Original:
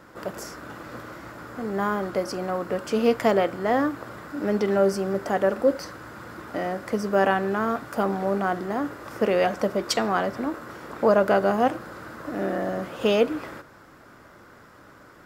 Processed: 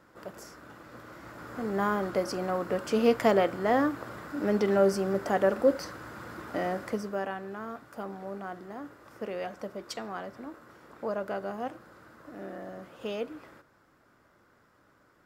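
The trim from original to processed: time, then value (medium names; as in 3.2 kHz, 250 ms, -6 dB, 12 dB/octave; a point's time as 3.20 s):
0.92 s -10 dB
1.56 s -2.5 dB
6.82 s -2.5 dB
7.26 s -14 dB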